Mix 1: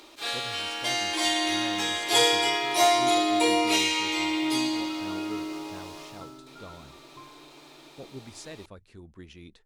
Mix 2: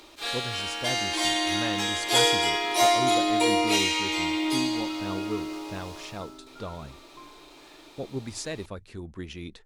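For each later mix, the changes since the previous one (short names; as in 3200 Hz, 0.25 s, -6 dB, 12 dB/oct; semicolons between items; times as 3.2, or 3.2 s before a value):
speech +8.5 dB; second sound: add HPF 170 Hz 24 dB/oct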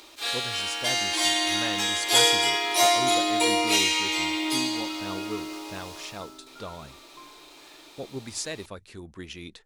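master: add tilt +1.5 dB/oct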